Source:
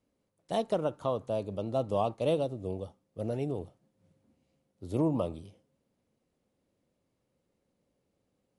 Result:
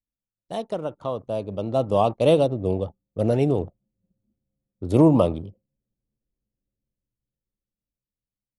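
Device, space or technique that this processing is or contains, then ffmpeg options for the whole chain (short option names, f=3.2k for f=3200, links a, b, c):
voice memo with heavy noise removal: -af "anlmdn=0.00398,dynaudnorm=f=220:g=17:m=13dB"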